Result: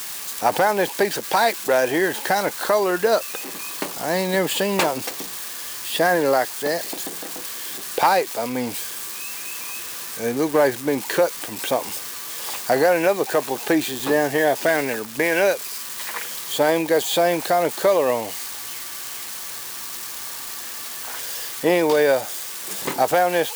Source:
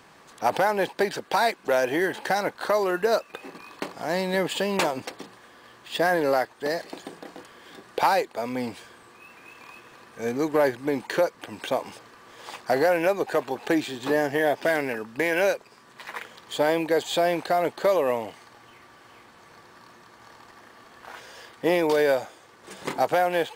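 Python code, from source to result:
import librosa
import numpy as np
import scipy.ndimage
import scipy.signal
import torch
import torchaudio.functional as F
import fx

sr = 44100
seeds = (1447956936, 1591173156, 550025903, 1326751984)

y = x + 0.5 * 10.0 ** (-25.5 / 20.0) * np.diff(np.sign(x), prepend=np.sign(x[:1]))
y = y * 10.0 ** (4.0 / 20.0)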